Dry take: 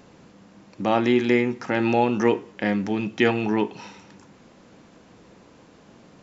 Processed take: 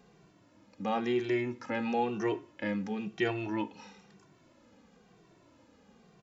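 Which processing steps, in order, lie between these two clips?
endless flanger 2.1 ms -1 Hz; gain -7.5 dB

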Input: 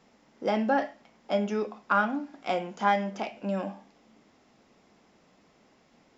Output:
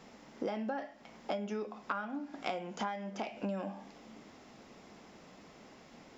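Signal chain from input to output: compressor 20:1, threshold -40 dBFS, peak gain reduction 23 dB; gain +6.5 dB

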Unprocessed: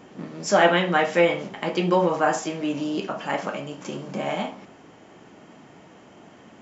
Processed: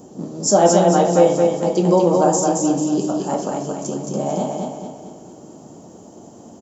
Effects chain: EQ curve 390 Hz 0 dB, 810 Hz -3 dB, 2100 Hz -24 dB, 7000 Hz +7 dB; feedback echo 0.222 s, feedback 45%, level -3.5 dB; gain +6.5 dB

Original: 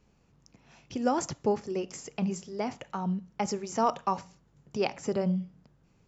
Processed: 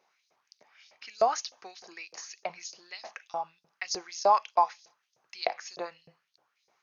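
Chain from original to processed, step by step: LFO high-pass saw up 3.7 Hz 600–6100 Hz; varispeed -11%

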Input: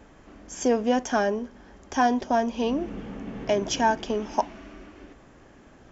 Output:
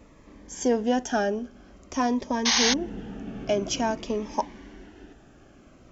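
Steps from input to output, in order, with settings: painted sound noise, 2.45–2.74, 640–6600 Hz -21 dBFS; cascading phaser falling 0.5 Hz

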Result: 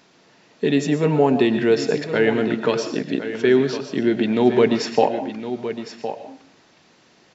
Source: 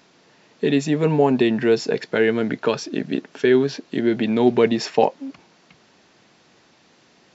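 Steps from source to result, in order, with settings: echo 1.062 s -11 dB; digital reverb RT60 0.44 s, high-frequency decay 0.65×, pre-delay 80 ms, DRR 9 dB

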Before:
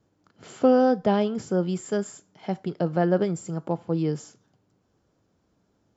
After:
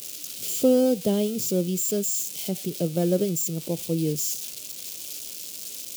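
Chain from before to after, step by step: switching spikes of -21.5 dBFS; band shelf 1200 Hz -15 dB

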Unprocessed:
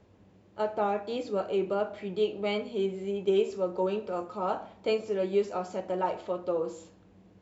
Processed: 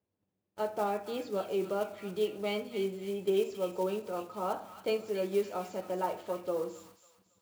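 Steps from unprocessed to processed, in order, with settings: block floating point 5-bit; HPF 84 Hz; gate -54 dBFS, range -22 dB; thin delay 0.274 s, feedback 33%, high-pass 1600 Hz, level -7.5 dB; gain -3.5 dB

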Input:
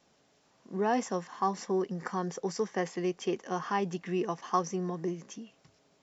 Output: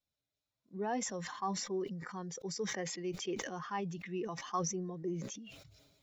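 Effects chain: per-bin expansion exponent 1.5; 4.72–5.39 bell 480 Hz +6.5 dB 1.1 oct; sustainer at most 41 dB/s; gain -6.5 dB

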